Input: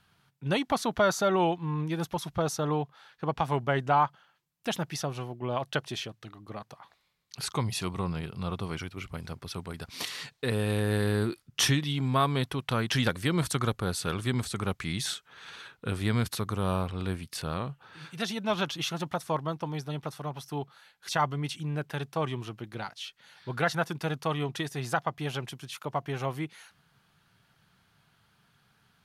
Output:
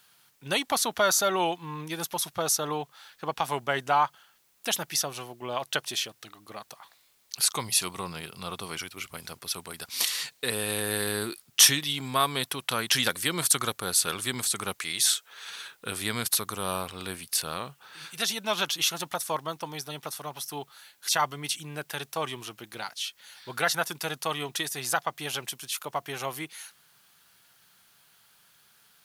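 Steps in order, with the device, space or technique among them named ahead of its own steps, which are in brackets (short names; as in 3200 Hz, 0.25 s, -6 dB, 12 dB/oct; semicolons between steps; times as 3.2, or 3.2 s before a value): turntable without a phono preamp (RIAA curve recording; white noise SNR 37 dB); 14.79–15.5 resonant low shelf 310 Hz -6 dB, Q 1.5; gain +1 dB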